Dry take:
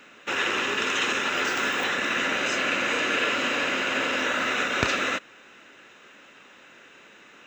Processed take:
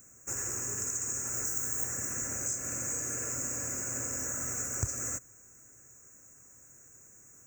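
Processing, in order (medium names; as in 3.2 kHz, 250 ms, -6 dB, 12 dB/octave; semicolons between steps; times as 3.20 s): FFT filter 120 Hz 0 dB, 180 Hz -18 dB, 1.1 kHz -27 dB, 3.7 kHz -15 dB, 6.8 kHz +9 dB; compression, threshold -34 dBFS, peak gain reduction 8 dB; Butterworth band-stop 3.5 kHz, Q 0.55; trim +9 dB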